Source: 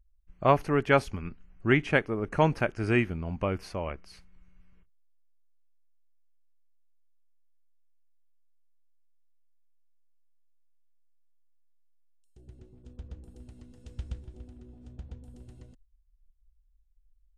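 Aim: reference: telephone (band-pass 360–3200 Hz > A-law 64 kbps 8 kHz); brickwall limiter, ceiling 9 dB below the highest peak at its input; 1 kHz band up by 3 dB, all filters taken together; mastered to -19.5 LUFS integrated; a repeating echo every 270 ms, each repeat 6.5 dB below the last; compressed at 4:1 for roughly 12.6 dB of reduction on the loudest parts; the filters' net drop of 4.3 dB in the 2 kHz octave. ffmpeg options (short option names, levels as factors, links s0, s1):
-af "equalizer=f=1000:t=o:g=5.5,equalizer=f=2000:t=o:g=-7,acompressor=threshold=0.0316:ratio=4,alimiter=level_in=1.41:limit=0.0631:level=0:latency=1,volume=0.708,highpass=360,lowpass=3200,aecho=1:1:270|540|810|1080|1350|1620:0.473|0.222|0.105|0.0491|0.0231|0.0109,volume=13.3" -ar 8000 -c:a pcm_alaw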